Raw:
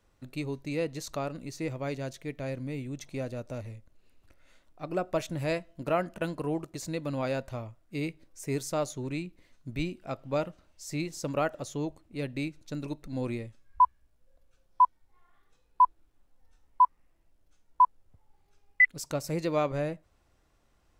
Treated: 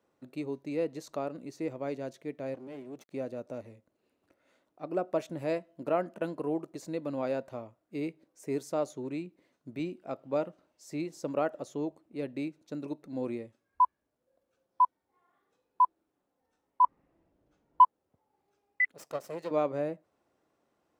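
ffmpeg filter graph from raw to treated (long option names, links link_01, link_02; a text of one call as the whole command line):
ffmpeg -i in.wav -filter_complex "[0:a]asettb=1/sr,asplit=3[link_01][link_02][link_03];[link_01]atrim=end=2.544[link_04];[link_02]atrim=start=2.54:end=3.13,asetpts=PTS-STARTPTS,afade=type=in:duration=0.004:curve=qsin,afade=type=out:start_time=0.586:duration=0.004:curve=qsin,equalizer=frequency=67:width_type=o:width=0.44:gain=7.5,aeval=exprs='max(val(0),0)':channel_layout=same[link_05];[link_03]atrim=start=3.126[link_06];[link_04][link_05]acrossfade=duration=0.004:curve1=hsin:curve2=qsin[link_07];[link_07][link_06]acrossfade=duration=0.004:curve1=qsin:curve2=hsin,asettb=1/sr,asplit=3[link_08][link_09][link_10];[link_08]atrim=end=16.844[link_11];[link_09]atrim=start=16.84:end=17.84,asetpts=PTS-STARTPTS,afade=type=in:duration=0.004:curve=qsin,afade=type=out:start_time=0.996:duration=0.004:curve=qsin,aemphasis=mode=reproduction:type=bsi,acontrast=41[link_12];[link_10]atrim=start=17.836[link_13];[link_11][link_12]acrossfade=duration=0.004:curve1=hsin:curve2=qsin[link_14];[link_14][link_13]acrossfade=duration=0.004:curve1=qsin:curve2=hsin,asettb=1/sr,asplit=3[link_15][link_16][link_17];[link_15]atrim=end=18.924[link_18];[link_16]atrim=start=18.92:end=19.51,asetpts=PTS-STARTPTS,afade=type=in:duration=0.004:curve=qsin,afade=type=out:start_time=0.586:duration=0.004:curve=qsin,highpass=frequency=230:poles=1,aecho=1:1:1.6:0.54,atrim=end_sample=26019,aeval=exprs='max(val(0),0)':channel_layout=same[link_19];[link_17]atrim=start=19.506[link_20];[link_18][link_19]acrossfade=duration=0.004:curve1=hsin:curve2=qsin[link_21];[link_21][link_20]acrossfade=duration=0.004:curve1=qsin:curve2=hsin,highpass=280,tiltshelf=frequency=1100:gain=6.5,volume=-3.5dB" out.wav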